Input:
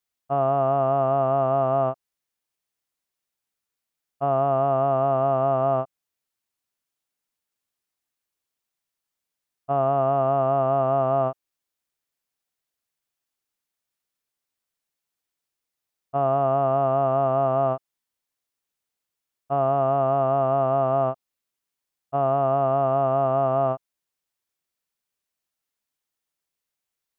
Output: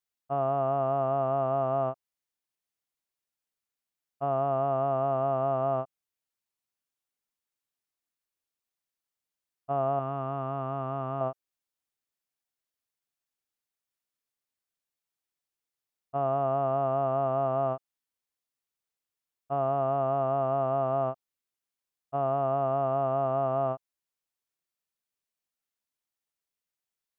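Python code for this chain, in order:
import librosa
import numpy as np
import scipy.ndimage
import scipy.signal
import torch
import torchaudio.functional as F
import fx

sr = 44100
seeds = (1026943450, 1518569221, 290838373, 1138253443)

y = fx.peak_eq(x, sr, hz=600.0, db=-10.0, octaves=0.81, at=(9.99, 11.21))
y = F.gain(torch.from_numpy(y), -6.0).numpy()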